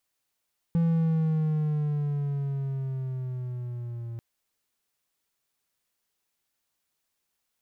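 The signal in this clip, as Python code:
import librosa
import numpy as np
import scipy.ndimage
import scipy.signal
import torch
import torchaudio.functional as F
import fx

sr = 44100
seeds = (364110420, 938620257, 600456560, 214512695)

y = fx.riser_tone(sr, length_s=3.44, level_db=-18.0, wave='triangle', hz=168.0, rise_st=-6.5, swell_db=-13.5)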